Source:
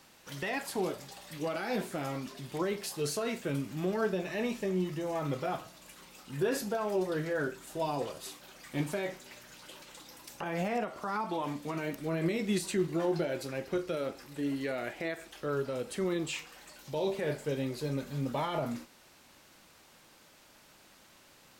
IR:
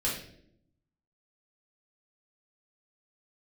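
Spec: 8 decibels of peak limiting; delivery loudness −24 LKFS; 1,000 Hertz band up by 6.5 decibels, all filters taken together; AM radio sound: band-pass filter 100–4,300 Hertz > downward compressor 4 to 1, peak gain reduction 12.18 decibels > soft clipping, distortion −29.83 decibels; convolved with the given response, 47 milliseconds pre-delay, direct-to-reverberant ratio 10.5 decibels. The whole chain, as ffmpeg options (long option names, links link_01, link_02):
-filter_complex "[0:a]equalizer=frequency=1000:width_type=o:gain=8.5,alimiter=level_in=0.5dB:limit=-24dB:level=0:latency=1,volume=-0.5dB,asplit=2[link_01][link_02];[1:a]atrim=start_sample=2205,adelay=47[link_03];[link_02][link_03]afir=irnorm=-1:irlink=0,volume=-17.5dB[link_04];[link_01][link_04]amix=inputs=2:normalize=0,highpass=100,lowpass=4300,acompressor=threshold=-42dB:ratio=4,asoftclip=threshold=-29.5dB,volume=21dB"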